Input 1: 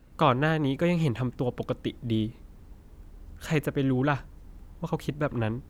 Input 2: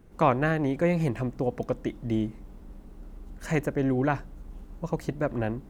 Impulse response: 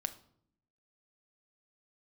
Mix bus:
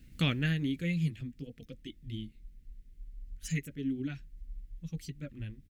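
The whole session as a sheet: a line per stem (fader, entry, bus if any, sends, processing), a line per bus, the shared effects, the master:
+1.0 dB, 0.00 s, no send, automatic ducking −16 dB, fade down 1.30 s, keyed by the second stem
+2.0 dB, 9.2 ms, polarity flipped, no send, spectral dynamics exaggerated over time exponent 3; comb filter 7.2 ms, depth 94%; downward compressor 2 to 1, threshold −41 dBFS, peak gain reduction 13.5 dB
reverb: not used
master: drawn EQ curve 240 Hz 0 dB, 990 Hz −25 dB, 2,000 Hz +3 dB

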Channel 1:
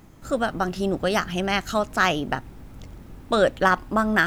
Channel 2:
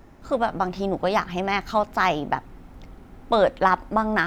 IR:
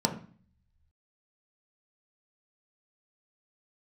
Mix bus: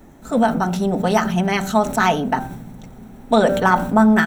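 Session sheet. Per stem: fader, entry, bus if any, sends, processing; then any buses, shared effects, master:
−7.5 dB, 0.00 s, send −10 dB, hum removal 195.2 Hz, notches 8; level that may fall only so fast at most 45 dB per second
+1.0 dB, 4.8 ms, send −20 dB, high-shelf EQ 4,100 Hz −11 dB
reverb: on, RT60 0.45 s, pre-delay 3 ms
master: high-shelf EQ 5,000 Hz +8.5 dB

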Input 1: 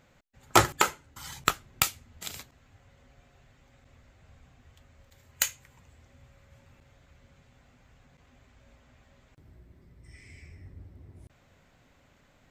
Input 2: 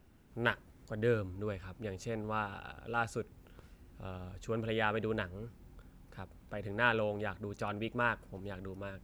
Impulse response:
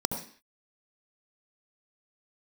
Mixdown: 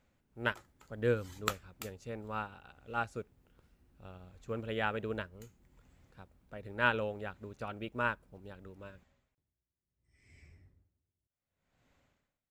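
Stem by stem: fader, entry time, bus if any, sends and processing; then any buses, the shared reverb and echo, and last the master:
−13.0 dB, 0.00 s, no send, tremolo with a sine in dB 0.67 Hz, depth 31 dB
−2.5 dB, 0.00 s, no send, expander for the loud parts 1.5 to 1, over −49 dBFS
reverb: not used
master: automatic gain control gain up to 4 dB

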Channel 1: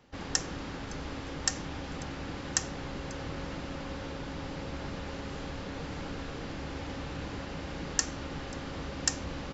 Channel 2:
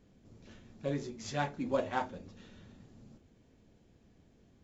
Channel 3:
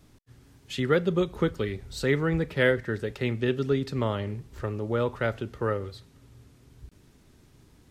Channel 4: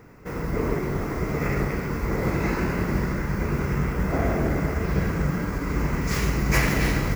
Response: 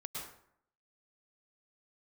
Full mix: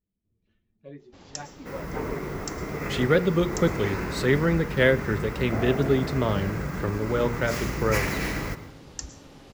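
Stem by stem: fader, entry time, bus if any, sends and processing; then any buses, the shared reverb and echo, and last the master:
−8.5 dB, 1.00 s, send −8 dB, parametric band 1,700 Hz −7 dB 1.6 octaves
−5.0 dB, 0.00 s, no send, spectral dynamics exaggerated over time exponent 1.5; low-pass filter 2,900 Hz 12 dB per octave
+2.5 dB, 2.20 s, no send, low-shelf EQ 200 Hz +7.5 dB; pitch vibrato 2.3 Hz 55 cents
−5.0 dB, 1.40 s, send −10 dB, no processing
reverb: on, RT60 0.65 s, pre-delay 97 ms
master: low-shelf EQ 210 Hz −6 dB; hum removal 118 Hz, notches 12

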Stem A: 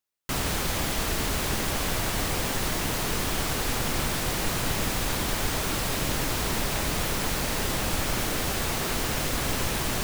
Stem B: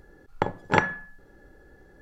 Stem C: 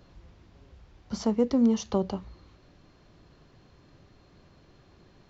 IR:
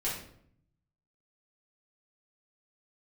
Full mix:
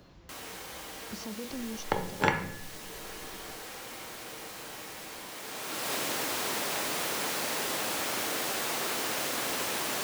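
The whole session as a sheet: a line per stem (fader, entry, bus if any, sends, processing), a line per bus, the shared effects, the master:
−3.0 dB, 0.00 s, send −22 dB, high-pass filter 330 Hz 12 dB per octave; automatic ducking −24 dB, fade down 0.30 s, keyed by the third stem
−3.5 dB, 1.50 s, send −7.5 dB, no processing
−9.0 dB, 0.00 s, no send, brickwall limiter −25.5 dBFS, peak gain reduction 12 dB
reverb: on, RT60 0.65 s, pre-delay 4 ms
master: multiband upward and downward compressor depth 40%

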